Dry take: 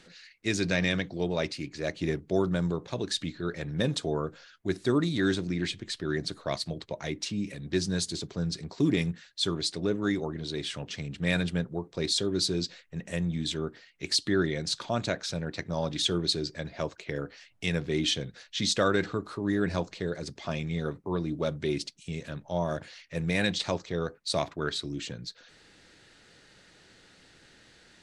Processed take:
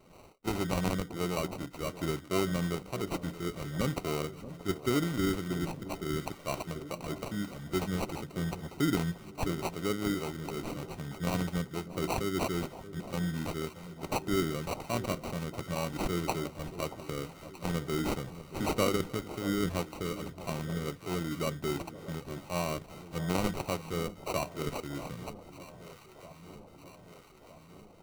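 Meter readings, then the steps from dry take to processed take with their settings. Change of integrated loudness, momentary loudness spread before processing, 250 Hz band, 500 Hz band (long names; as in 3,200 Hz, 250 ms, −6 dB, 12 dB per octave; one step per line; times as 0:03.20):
−4.0 dB, 9 LU, −3.0 dB, −3.5 dB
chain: sample-rate reduction 1,700 Hz, jitter 0%
delay that swaps between a low-pass and a high-pass 629 ms, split 970 Hz, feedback 78%, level −13.5 dB
level −3.5 dB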